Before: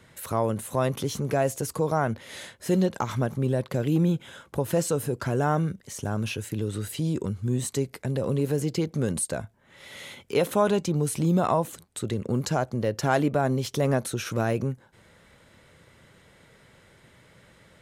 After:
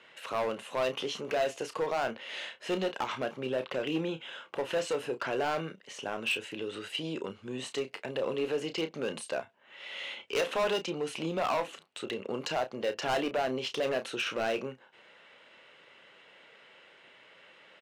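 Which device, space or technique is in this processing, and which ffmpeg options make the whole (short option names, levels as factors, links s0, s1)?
megaphone: -filter_complex "[0:a]highpass=460,lowpass=3900,equalizer=f=2800:t=o:w=0.33:g=11,asoftclip=type=hard:threshold=0.0531,asplit=2[s0][s1];[s1]adelay=31,volume=0.335[s2];[s0][s2]amix=inputs=2:normalize=0"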